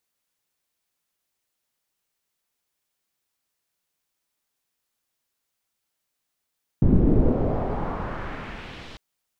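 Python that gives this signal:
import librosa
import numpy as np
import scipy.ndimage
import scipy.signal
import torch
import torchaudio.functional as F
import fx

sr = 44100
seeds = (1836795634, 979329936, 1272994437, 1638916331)

y = fx.riser_noise(sr, seeds[0], length_s=2.15, colour='pink', kind='lowpass', start_hz=230.0, end_hz=4100.0, q=1.5, swell_db=-29.5, law='exponential')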